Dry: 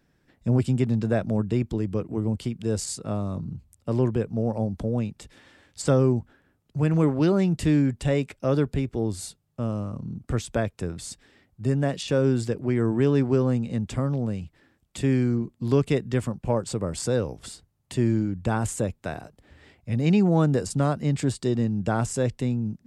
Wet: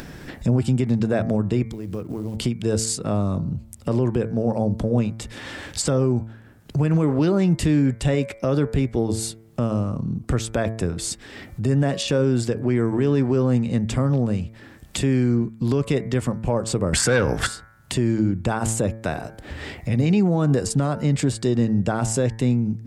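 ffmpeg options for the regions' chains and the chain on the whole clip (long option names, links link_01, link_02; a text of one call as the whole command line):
ffmpeg -i in.wav -filter_complex "[0:a]asettb=1/sr,asplit=3[link_01][link_02][link_03];[link_01]atrim=end=1.664[link_04];[link_02]atrim=start=1.66:end=2.37,asetpts=PTS-STARTPTS,afade=type=in:duration=0.004:curve=qsin,afade=type=out:start_time=0.706:duration=0.004:curve=qsin,acompressor=threshold=-46dB:ratio=2:attack=3.2:release=140:knee=1:detection=peak,acrusher=bits=8:mode=log:mix=0:aa=0.000001[link_05];[link_03]atrim=start=2.366[link_06];[link_04][link_05]acrossfade=duration=0.004:curve1=hsin:curve2=qsin[link_07];[link_07][link_06]acrossfade=duration=0.004:curve1=qsin:curve2=hsin,asettb=1/sr,asplit=3[link_08][link_09][link_10];[link_08]atrim=end=16.934[link_11];[link_09]atrim=start=16.93:end=17.47,asetpts=PTS-STARTPTS,afade=type=in:duration=0.004:curve=qsin,afade=type=out:start_time=0.536:duration=0.004:curve=qsin,equalizer=frequency=1600:width=1.9:gain=14.5,acompressor=mode=upward:threshold=-26dB:ratio=2.5:attack=3.2:release=140:knee=2.83:detection=peak,aeval=exprs='0.266*sin(PI/2*1.41*val(0)/0.266)':channel_layout=same[link_12];[link_10]atrim=start=17.466[link_13];[link_11][link_12]acrossfade=duration=0.004:curve1=hsin:curve2=qsin[link_14];[link_14][link_13]acrossfade=duration=0.004:curve1=qsin:curve2=hsin,bandreject=frequency=111.7:width_type=h:width=4,bandreject=frequency=223.4:width_type=h:width=4,bandreject=frequency=335.1:width_type=h:width=4,bandreject=frequency=446.8:width_type=h:width=4,bandreject=frequency=558.5:width_type=h:width=4,bandreject=frequency=670.2:width_type=h:width=4,bandreject=frequency=781.9:width_type=h:width=4,bandreject=frequency=893.6:width_type=h:width=4,bandreject=frequency=1005.3:width_type=h:width=4,bandreject=frequency=1117:width_type=h:width=4,bandreject=frequency=1228.7:width_type=h:width=4,bandreject=frequency=1340.4:width_type=h:width=4,bandreject=frequency=1452.1:width_type=h:width=4,bandreject=frequency=1563.8:width_type=h:width=4,bandreject=frequency=1675.5:width_type=h:width=4,bandreject=frequency=1787.2:width_type=h:width=4,bandreject=frequency=1898.9:width_type=h:width=4,bandreject=frequency=2010.6:width_type=h:width=4,bandreject=frequency=2122.3:width_type=h:width=4,bandreject=frequency=2234:width_type=h:width=4,bandreject=frequency=2345.7:width_type=h:width=4,acompressor=mode=upward:threshold=-27dB:ratio=2.5,alimiter=limit=-18dB:level=0:latency=1:release=84,volume=6.5dB" out.wav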